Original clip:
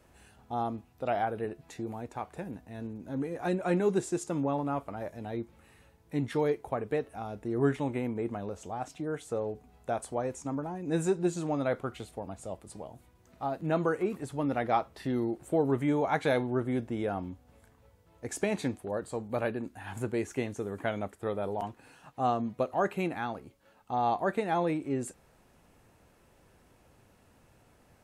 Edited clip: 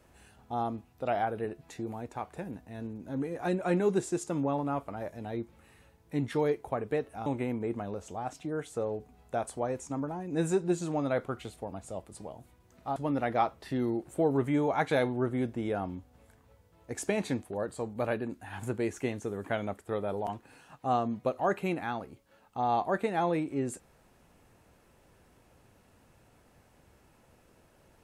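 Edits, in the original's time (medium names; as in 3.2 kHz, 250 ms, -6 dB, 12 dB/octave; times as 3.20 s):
7.26–7.81 s: delete
13.51–14.30 s: delete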